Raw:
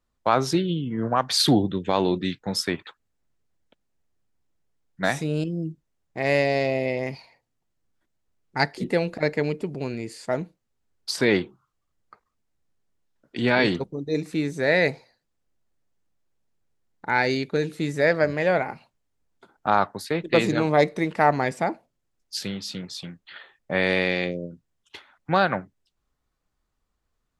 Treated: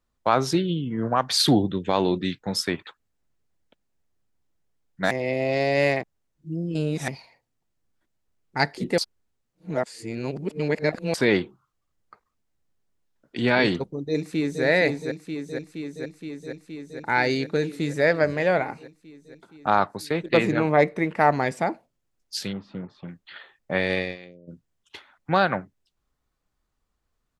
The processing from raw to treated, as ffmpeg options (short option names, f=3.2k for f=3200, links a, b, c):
-filter_complex "[0:a]asplit=2[a][b];[b]afade=t=in:st=13.93:d=0.01,afade=t=out:st=14.64:d=0.01,aecho=0:1:470|940|1410|1880|2350|2820|3290|3760|4230|4700|5170|5640:0.562341|0.449873|0.359898|0.287919|0.230335|0.184268|0.147414|0.117932|0.0943452|0.0754762|0.0603809|0.0483048[c];[a][c]amix=inputs=2:normalize=0,asettb=1/sr,asplit=3[d][e][f];[d]atrim=end=20.374[g];[e]atrim=start=20.37:end=21.19,asetpts=PTS-STARTPTS,afade=t=in:d=0.004:c=qsin,afade=t=out:st=0.816:d=0.004:c=qsin,highshelf=f=3k:t=q:w=1.5:g=-6.5[h];[f]atrim=start=21.186[i];[g][h]acrossfade=d=0.004:c1=hsin:c2=qsin[j];[j][i]acrossfade=d=0.004:c1=qsin:c2=hsin,asplit=3[k][l][m];[k]afade=t=out:st=22.52:d=0.02[n];[l]lowpass=f=1.1k:t=q:w=1.7,afade=t=in:st=22.52:d=0.02,afade=t=out:st=23.07:d=0.02[o];[m]afade=t=in:st=23.07:d=0.02[p];[n][o][p]amix=inputs=3:normalize=0,asplit=3[q][r][s];[q]afade=t=out:st=23.77:d=0.02[t];[r]agate=range=-18dB:threshold=-23dB:ratio=16:release=100:detection=peak,afade=t=in:st=23.77:d=0.02,afade=t=out:st=24.47:d=0.02[u];[s]afade=t=in:st=24.47:d=0.02[v];[t][u][v]amix=inputs=3:normalize=0,asplit=5[w][x][y][z][aa];[w]atrim=end=5.112[ab];[x]atrim=start=5.108:end=7.082,asetpts=PTS-STARTPTS,areverse[ac];[y]atrim=start=7.078:end=8.982[ad];[z]atrim=start=8.978:end=11.142,asetpts=PTS-STARTPTS,areverse[ae];[aa]atrim=start=11.138[af];[ab][ac]acrossfade=d=0.004:c1=hsin:c2=hsin[ag];[ag][ad]acrossfade=d=0.004:c1=hsin:c2=hsin[ah];[ah][ae]acrossfade=d=0.004:c1=hsin:c2=hsin[ai];[ai][af]acrossfade=d=0.004:c1=hsin:c2=hsin"